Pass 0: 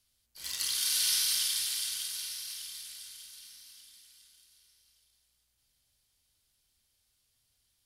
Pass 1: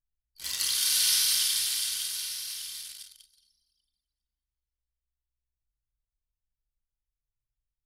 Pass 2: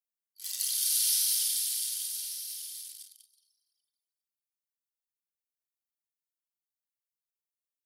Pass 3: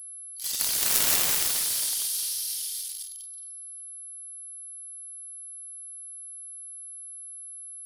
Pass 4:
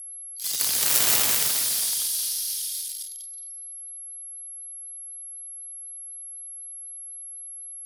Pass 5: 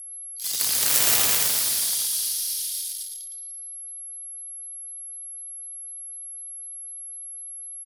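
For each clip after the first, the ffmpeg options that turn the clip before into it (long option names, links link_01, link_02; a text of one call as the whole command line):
ffmpeg -i in.wav -af "anlmdn=0.0398,volume=4dB" out.wav
ffmpeg -i in.wav -af "aderivative,volume=-2.5dB" out.wav
ffmpeg -i in.wav -af "aeval=exprs='val(0)+0.00447*sin(2*PI*11000*n/s)':channel_layout=same,aeval=exprs='0.251*(cos(1*acos(clip(val(0)/0.251,-1,1)))-cos(1*PI/2))+0.01*(cos(2*acos(clip(val(0)/0.251,-1,1)))-cos(2*PI/2))+0.0794*(cos(7*acos(clip(val(0)/0.251,-1,1)))-cos(7*PI/2))':channel_layout=same,volume=6.5dB" out.wav
ffmpeg -i in.wav -af "afreqshift=96,volume=2.5dB" out.wav
ffmpeg -i in.wav -af "aecho=1:1:113:0.501" out.wav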